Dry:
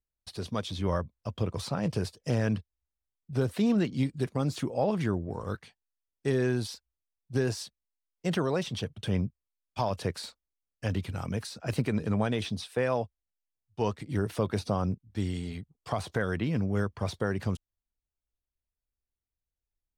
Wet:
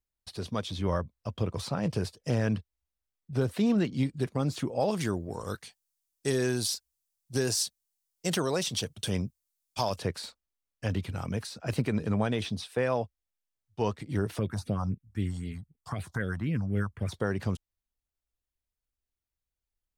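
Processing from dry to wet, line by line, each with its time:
0:04.80–0:09.98: bass and treble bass −3 dB, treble +14 dB
0:14.39–0:17.12: all-pass phaser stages 4, 3.9 Hz, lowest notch 370–1,100 Hz

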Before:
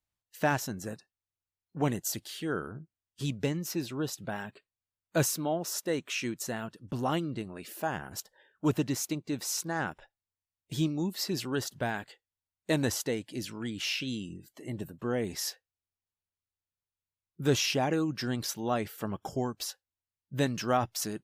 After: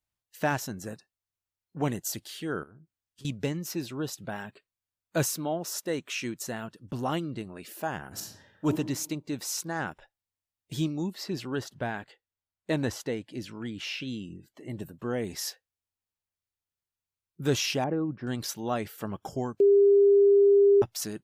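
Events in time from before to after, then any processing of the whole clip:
0:02.63–0:03.25: downward compressor 4 to 1, threshold −52 dBFS
0:08.09–0:08.66: thrown reverb, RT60 0.91 s, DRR −1.5 dB
0:11.10–0:14.70: high-shelf EQ 5,300 Hz −11.5 dB
0:17.84–0:18.27: low-pass filter 1,000 Hz
0:19.60–0:20.82: beep over 401 Hz −15.5 dBFS

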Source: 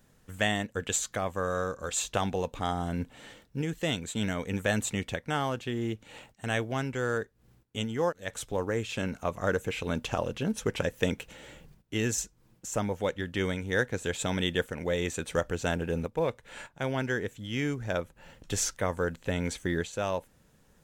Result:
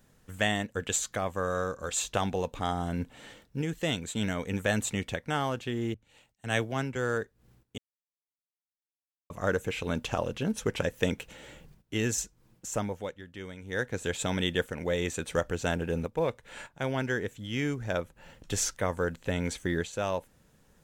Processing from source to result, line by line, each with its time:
0:05.94–0:06.96: multiband upward and downward expander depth 70%
0:07.78–0:09.30: silence
0:12.72–0:14.02: duck −12 dB, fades 0.46 s

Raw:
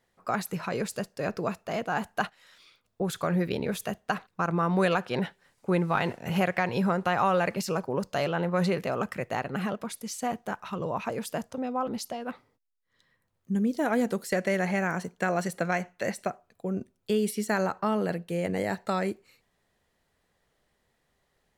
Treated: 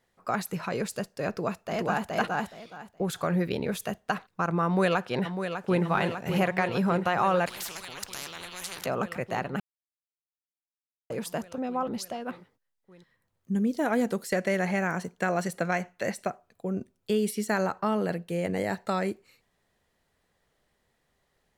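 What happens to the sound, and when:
0:01.30–0:02.13: delay throw 420 ms, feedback 20%, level −0.5 dB
0:04.65–0:05.83: delay throw 600 ms, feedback 80%, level −8 dB
0:07.46–0:08.86: every bin compressed towards the loudest bin 10 to 1
0:09.60–0:11.10: silence

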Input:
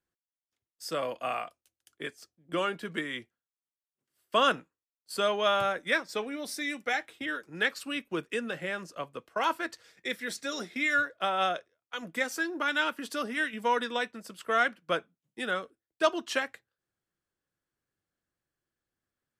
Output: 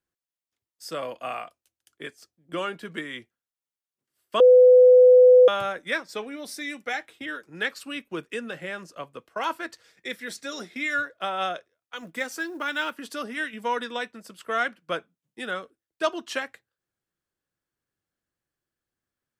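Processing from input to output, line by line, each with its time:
0:04.40–0:05.48: beep over 502 Hz −9.5 dBFS
0:11.96–0:12.93: floating-point word with a short mantissa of 4 bits

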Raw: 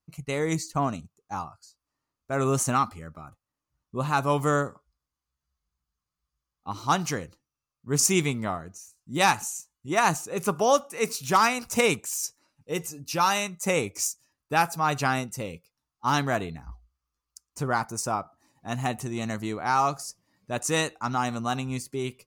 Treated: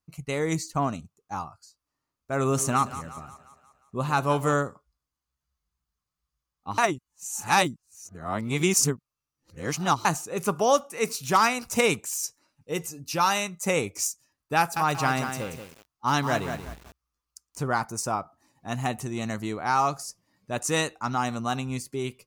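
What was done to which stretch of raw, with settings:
0:02.40–0:04.54: echo with a time of its own for lows and highs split 530 Hz, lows 115 ms, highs 177 ms, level −14 dB
0:06.78–0:10.05: reverse
0:14.58–0:17.62: feedback echo at a low word length 182 ms, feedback 35%, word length 7 bits, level −7 dB

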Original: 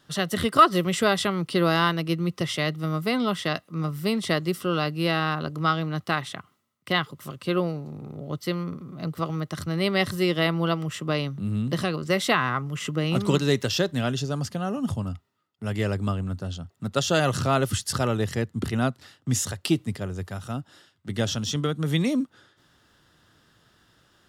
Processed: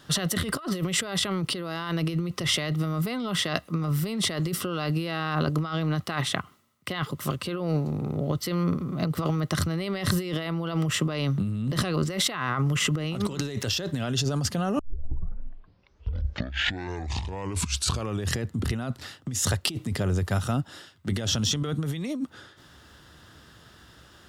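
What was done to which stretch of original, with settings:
0:14.79: tape start 3.61 s
whole clip: parametric band 69 Hz +10 dB 0.39 octaves; compressor whose output falls as the input rises −31 dBFS, ratio −1; level +3 dB

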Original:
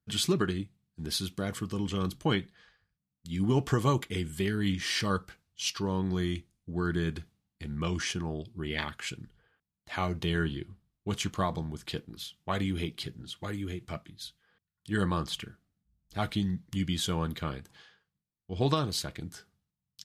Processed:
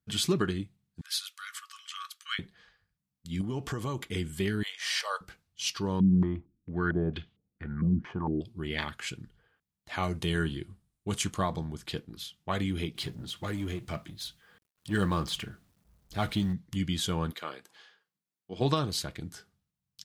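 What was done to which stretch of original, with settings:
0:01.01–0:02.39: linear-phase brick-wall high-pass 1,100 Hz
0:03.41–0:04.10: downward compressor 3 to 1, threshold −32 dBFS
0:04.63–0:05.21: Butterworth high-pass 540 Hz 48 dB per octave
0:06.00–0:08.41: low-pass on a step sequencer 4.4 Hz 210–3,200 Hz
0:10.03–0:11.38: parametric band 9,100 Hz +9.5 dB 0.76 octaves
0:12.95–0:16.53: mu-law and A-law mismatch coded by mu
0:17.30–0:18.60: high-pass filter 520 Hz → 190 Hz

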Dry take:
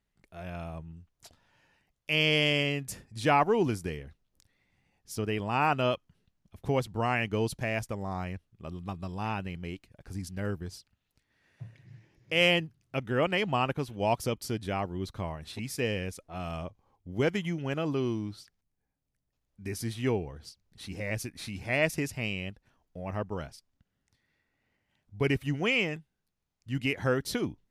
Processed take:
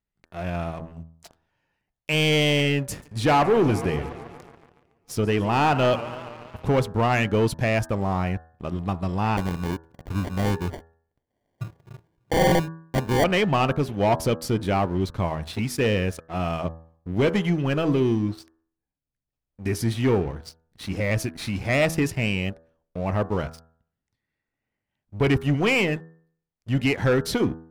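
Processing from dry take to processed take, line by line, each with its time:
0:02.77–0:06.82: feedback echo with a swinging delay time 141 ms, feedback 74%, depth 132 cents, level −18.5 dB
0:09.37–0:13.24: sample-rate reduction 1,300 Hz
whole clip: leveller curve on the samples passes 3; high-shelf EQ 3,100 Hz −7 dB; hum removal 81.41 Hz, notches 22

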